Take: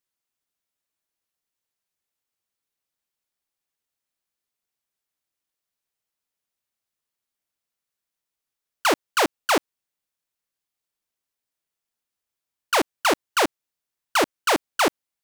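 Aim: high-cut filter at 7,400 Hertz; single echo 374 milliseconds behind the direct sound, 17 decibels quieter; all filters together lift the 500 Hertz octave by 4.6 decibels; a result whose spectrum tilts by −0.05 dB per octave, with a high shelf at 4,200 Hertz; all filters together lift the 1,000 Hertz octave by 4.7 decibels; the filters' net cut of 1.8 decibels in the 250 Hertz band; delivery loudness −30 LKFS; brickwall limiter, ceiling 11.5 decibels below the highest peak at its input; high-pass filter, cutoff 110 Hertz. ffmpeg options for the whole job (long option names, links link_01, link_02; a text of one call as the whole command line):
ffmpeg -i in.wav -af "highpass=110,lowpass=7400,equalizer=frequency=250:width_type=o:gain=-6.5,equalizer=frequency=500:width_type=o:gain=6,equalizer=frequency=1000:width_type=o:gain=4,highshelf=frequency=4200:gain=8.5,alimiter=limit=-15dB:level=0:latency=1,aecho=1:1:374:0.141,volume=-1.5dB" out.wav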